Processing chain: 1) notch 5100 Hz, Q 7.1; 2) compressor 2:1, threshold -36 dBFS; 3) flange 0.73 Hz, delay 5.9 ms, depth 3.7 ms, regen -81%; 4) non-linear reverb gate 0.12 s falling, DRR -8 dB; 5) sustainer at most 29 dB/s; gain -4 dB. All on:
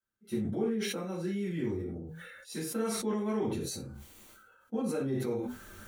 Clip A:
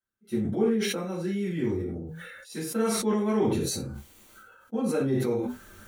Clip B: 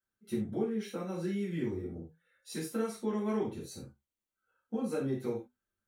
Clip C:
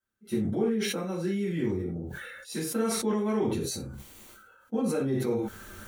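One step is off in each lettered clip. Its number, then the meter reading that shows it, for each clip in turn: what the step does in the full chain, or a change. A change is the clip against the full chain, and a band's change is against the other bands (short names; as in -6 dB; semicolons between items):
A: 2, mean gain reduction 4.0 dB; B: 5, momentary loudness spread change -2 LU; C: 3, momentary loudness spread change -2 LU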